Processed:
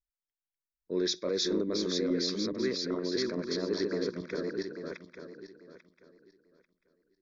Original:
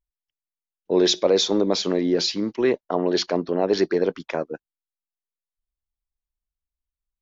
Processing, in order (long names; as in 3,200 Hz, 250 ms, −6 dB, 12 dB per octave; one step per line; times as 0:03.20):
feedback delay that plays each chunk backwards 421 ms, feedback 47%, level −2 dB
phaser with its sweep stopped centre 2,900 Hz, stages 6
level −9 dB